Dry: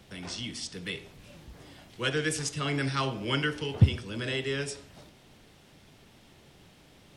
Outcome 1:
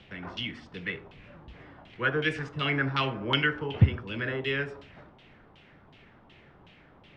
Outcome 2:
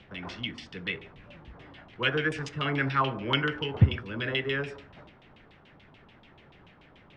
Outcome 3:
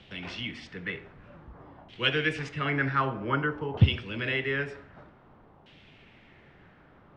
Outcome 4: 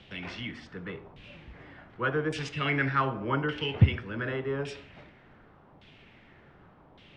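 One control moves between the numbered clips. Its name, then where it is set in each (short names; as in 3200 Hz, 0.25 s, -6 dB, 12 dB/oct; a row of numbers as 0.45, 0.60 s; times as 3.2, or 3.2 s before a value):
LFO low-pass, rate: 2.7, 6.9, 0.53, 0.86 Hz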